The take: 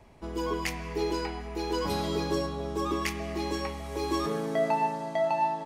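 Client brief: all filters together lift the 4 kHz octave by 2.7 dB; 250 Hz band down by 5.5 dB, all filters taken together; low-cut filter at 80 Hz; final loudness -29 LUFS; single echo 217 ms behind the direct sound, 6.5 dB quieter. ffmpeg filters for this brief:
-af "highpass=80,equalizer=f=250:t=o:g=-8.5,equalizer=f=4000:t=o:g=3.5,aecho=1:1:217:0.473,volume=1.26"

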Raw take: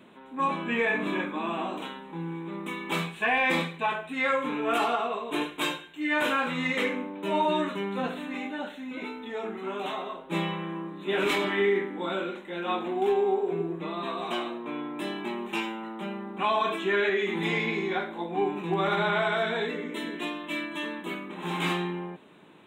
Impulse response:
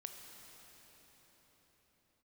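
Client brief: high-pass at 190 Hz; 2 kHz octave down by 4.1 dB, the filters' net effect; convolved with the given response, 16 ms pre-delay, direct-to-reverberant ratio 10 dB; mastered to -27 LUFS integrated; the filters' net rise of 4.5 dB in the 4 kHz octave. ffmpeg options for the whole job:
-filter_complex "[0:a]highpass=190,equalizer=f=2000:t=o:g=-7.5,equalizer=f=4000:t=o:g=8.5,asplit=2[s0][s1];[1:a]atrim=start_sample=2205,adelay=16[s2];[s1][s2]afir=irnorm=-1:irlink=0,volume=0.501[s3];[s0][s3]amix=inputs=2:normalize=0,volume=1.41"

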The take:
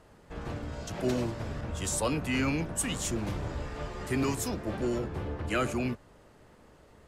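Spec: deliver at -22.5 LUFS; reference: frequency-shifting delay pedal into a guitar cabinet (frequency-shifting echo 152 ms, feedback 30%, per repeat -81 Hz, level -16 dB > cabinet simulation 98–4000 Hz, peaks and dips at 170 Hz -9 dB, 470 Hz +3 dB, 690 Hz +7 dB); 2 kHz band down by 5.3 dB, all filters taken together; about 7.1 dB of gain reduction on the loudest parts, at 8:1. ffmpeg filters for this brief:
-filter_complex "[0:a]equalizer=f=2000:t=o:g=-7,acompressor=threshold=0.0251:ratio=8,asplit=4[s0][s1][s2][s3];[s1]adelay=152,afreqshift=-81,volume=0.158[s4];[s2]adelay=304,afreqshift=-162,volume=0.0473[s5];[s3]adelay=456,afreqshift=-243,volume=0.0143[s6];[s0][s4][s5][s6]amix=inputs=4:normalize=0,highpass=98,equalizer=f=170:t=q:w=4:g=-9,equalizer=f=470:t=q:w=4:g=3,equalizer=f=690:t=q:w=4:g=7,lowpass=f=4000:w=0.5412,lowpass=f=4000:w=1.3066,volume=6.31"

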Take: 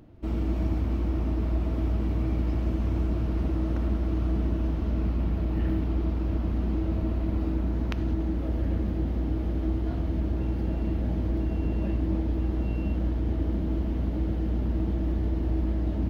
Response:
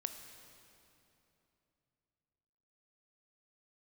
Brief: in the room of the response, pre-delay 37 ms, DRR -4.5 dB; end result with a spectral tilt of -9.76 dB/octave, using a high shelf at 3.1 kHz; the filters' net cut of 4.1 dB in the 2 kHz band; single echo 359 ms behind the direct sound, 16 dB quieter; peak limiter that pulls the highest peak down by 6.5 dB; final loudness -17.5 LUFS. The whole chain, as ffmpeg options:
-filter_complex "[0:a]equalizer=f=2000:t=o:g=-3,highshelf=f=3100:g=-6.5,alimiter=limit=0.0891:level=0:latency=1,aecho=1:1:359:0.158,asplit=2[s0][s1];[1:a]atrim=start_sample=2205,adelay=37[s2];[s1][s2]afir=irnorm=-1:irlink=0,volume=1.88[s3];[s0][s3]amix=inputs=2:normalize=0,volume=2"

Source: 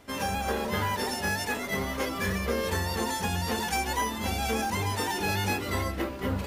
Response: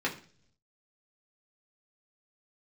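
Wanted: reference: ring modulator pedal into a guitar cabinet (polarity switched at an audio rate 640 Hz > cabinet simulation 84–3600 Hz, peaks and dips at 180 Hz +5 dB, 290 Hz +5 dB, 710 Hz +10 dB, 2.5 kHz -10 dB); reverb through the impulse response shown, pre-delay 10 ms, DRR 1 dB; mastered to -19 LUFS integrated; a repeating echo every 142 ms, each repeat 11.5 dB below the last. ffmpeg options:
-filter_complex "[0:a]aecho=1:1:142|284|426:0.266|0.0718|0.0194,asplit=2[s0][s1];[1:a]atrim=start_sample=2205,adelay=10[s2];[s1][s2]afir=irnorm=-1:irlink=0,volume=0.355[s3];[s0][s3]amix=inputs=2:normalize=0,aeval=exprs='val(0)*sgn(sin(2*PI*640*n/s))':c=same,highpass=84,equalizer=f=180:t=q:w=4:g=5,equalizer=f=290:t=q:w=4:g=5,equalizer=f=710:t=q:w=4:g=10,equalizer=f=2500:t=q:w=4:g=-10,lowpass=f=3600:w=0.5412,lowpass=f=3600:w=1.3066,volume=2.11"

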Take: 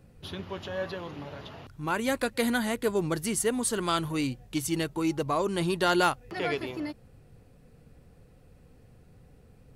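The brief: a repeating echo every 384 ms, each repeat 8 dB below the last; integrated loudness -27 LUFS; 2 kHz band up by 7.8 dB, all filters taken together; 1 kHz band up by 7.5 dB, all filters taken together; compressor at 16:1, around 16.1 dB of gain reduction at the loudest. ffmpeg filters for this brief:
-af "equalizer=f=1000:t=o:g=7.5,equalizer=f=2000:t=o:g=7.5,acompressor=threshold=0.0355:ratio=16,aecho=1:1:384|768|1152|1536|1920:0.398|0.159|0.0637|0.0255|0.0102,volume=2.24"

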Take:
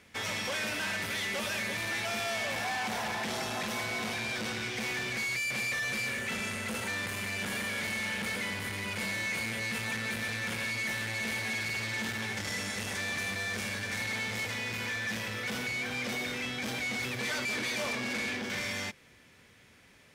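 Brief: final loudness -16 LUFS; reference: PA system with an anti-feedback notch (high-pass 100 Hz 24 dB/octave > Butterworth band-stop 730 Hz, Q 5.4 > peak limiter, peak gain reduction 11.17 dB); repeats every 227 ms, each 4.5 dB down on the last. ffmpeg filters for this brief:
-af "highpass=f=100:w=0.5412,highpass=f=100:w=1.3066,asuperstop=centerf=730:order=8:qfactor=5.4,aecho=1:1:227|454|681|908|1135|1362|1589|1816|2043:0.596|0.357|0.214|0.129|0.0772|0.0463|0.0278|0.0167|0.01,volume=11.9,alimiter=limit=0.335:level=0:latency=1"

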